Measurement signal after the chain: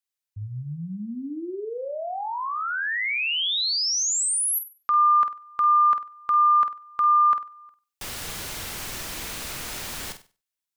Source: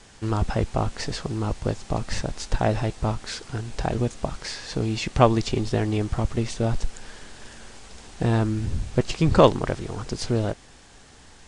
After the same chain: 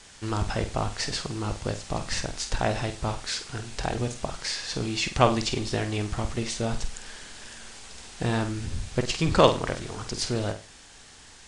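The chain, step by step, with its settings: tilt shelf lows -4.5 dB, about 1.2 kHz; flutter echo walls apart 8.3 m, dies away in 0.32 s; trim -1 dB

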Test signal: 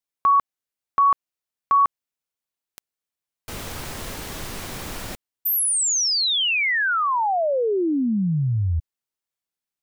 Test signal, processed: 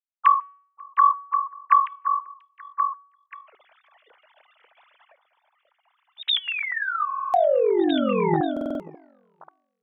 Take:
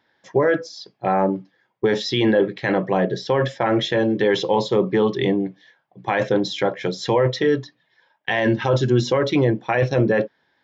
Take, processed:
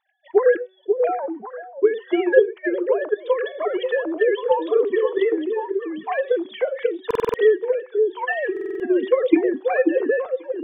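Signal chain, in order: formants replaced by sine waves; de-hum 376.5 Hz, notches 9; transient shaper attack +7 dB, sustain +2 dB; on a send: repeats whose band climbs or falls 537 ms, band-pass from 380 Hz, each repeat 1.4 oct, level -3.5 dB; on the sum: buffer glitch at 7.06/8.52 s, samples 2048, times 5; trim -4.5 dB

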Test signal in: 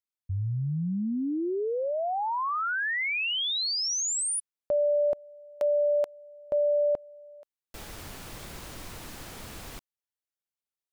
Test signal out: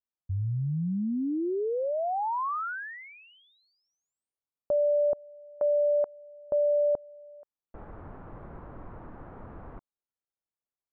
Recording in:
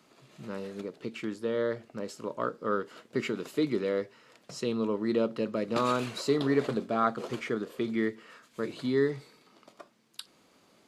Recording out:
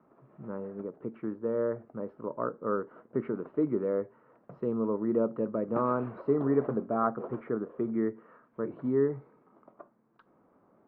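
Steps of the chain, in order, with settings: low-pass 1.3 kHz 24 dB/octave

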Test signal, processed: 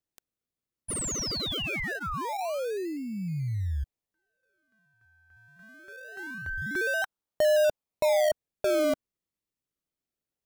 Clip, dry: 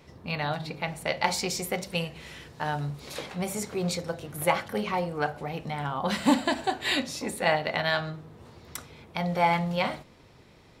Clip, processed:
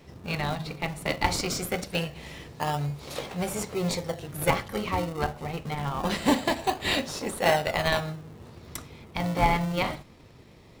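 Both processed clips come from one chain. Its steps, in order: band-stop 1.5 kHz, Q 9.5; dynamic bell 250 Hz, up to -6 dB, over -46 dBFS, Q 1.3; in parallel at -4 dB: decimation with a swept rate 36×, swing 100% 0.24 Hz

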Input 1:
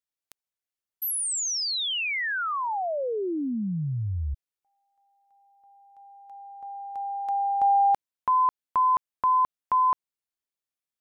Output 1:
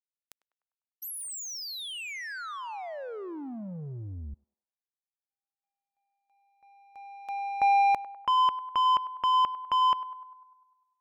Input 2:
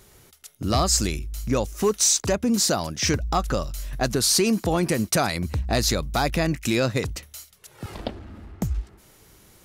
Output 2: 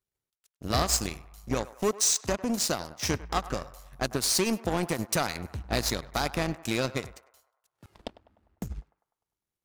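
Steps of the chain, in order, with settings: power-law waveshaper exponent 2; band-passed feedback delay 100 ms, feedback 59%, band-pass 1 kHz, level -15 dB

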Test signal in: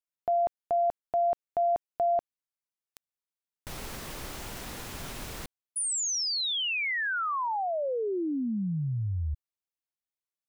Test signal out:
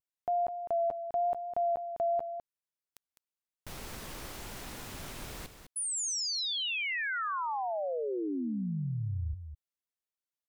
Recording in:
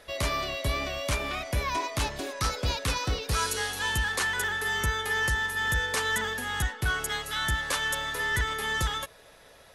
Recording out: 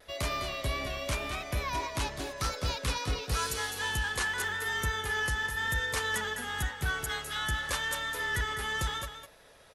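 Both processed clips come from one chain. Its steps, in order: vibrato 0.91 Hz 32 cents; on a send: delay 205 ms -9.5 dB; on the sum: trim -4 dB

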